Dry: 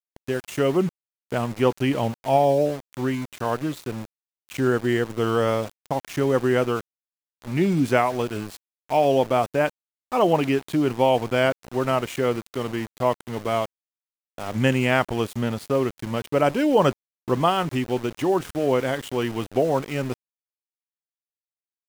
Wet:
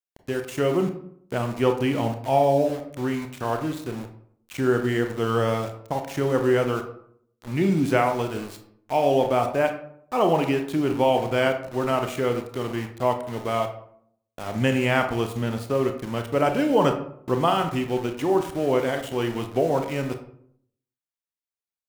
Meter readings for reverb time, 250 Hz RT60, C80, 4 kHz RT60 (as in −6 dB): 0.65 s, 0.75 s, 12.5 dB, 0.35 s